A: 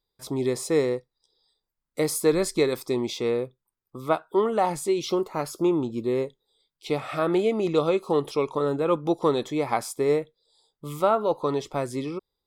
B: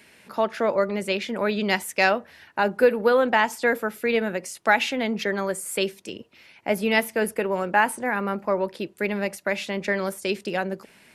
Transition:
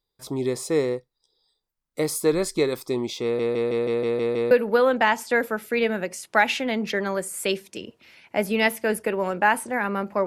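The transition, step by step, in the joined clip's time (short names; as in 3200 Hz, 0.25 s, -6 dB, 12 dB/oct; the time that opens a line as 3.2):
A
3.23 stutter in place 0.16 s, 8 plays
4.51 switch to B from 2.83 s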